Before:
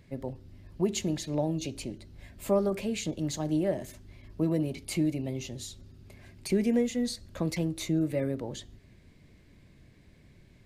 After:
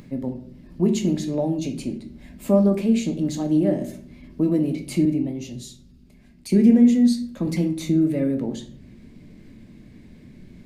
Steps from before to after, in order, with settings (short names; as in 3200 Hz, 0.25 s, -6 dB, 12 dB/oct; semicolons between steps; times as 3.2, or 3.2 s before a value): bell 230 Hz +12.5 dB 1.2 oct; notches 50/100/150 Hz; upward compressor, threshold -40 dBFS; shoebox room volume 60 m³, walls mixed, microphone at 0.4 m; 5.05–7.47 three-band expander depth 40%